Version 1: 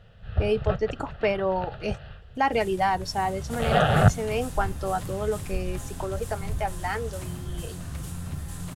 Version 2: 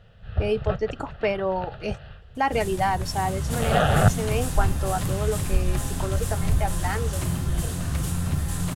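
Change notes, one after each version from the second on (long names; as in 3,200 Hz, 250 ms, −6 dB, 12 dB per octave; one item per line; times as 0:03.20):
second sound +8.5 dB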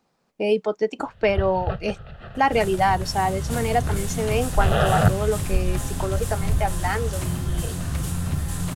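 speech +4.0 dB
first sound: entry +1.00 s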